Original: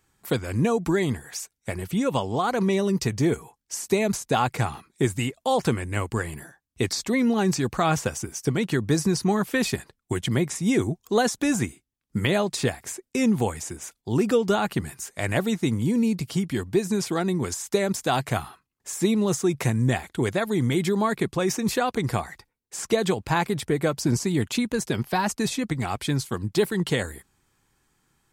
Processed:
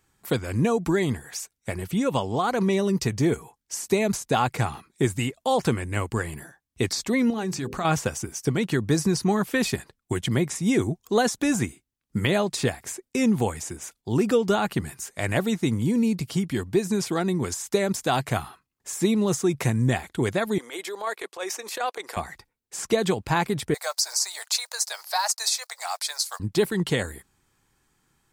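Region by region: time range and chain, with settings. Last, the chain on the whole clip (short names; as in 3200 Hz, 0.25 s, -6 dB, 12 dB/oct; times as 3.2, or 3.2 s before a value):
7.3–7.85 notches 50/100/150/200/250/300/350/400/450/500 Hz + compressor 2:1, threshold -29 dBFS
20.58–22.17 HPF 460 Hz 24 dB/oct + transient shaper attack -11 dB, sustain -4 dB
23.74–26.4 block floating point 7-bit + steep high-pass 620 Hz 48 dB/oct + resonant high shelf 3700 Hz +6 dB, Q 3
whole clip: dry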